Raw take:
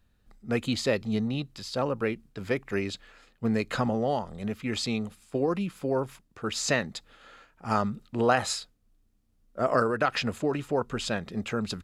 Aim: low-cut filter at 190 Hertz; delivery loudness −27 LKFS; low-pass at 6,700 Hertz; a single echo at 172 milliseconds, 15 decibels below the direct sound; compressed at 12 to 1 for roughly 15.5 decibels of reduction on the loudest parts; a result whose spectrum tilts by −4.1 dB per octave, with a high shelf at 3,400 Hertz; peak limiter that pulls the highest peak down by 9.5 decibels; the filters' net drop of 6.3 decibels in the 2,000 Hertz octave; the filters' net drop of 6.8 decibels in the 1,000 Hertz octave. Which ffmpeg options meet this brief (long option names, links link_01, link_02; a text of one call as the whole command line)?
ffmpeg -i in.wav -af "highpass=190,lowpass=6700,equalizer=frequency=1000:width_type=o:gain=-8.5,equalizer=frequency=2000:width_type=o:gain=-7,highshelf=frequency=3400:gain=5.5,acompressor=threshold=-39dB:ratio=12,alimiter=level_in=13dB:limit=-24dB:level=0:latency=1,volume=-13dB,aecho=1:1:172:0.178,volume=20.5dB" out.wav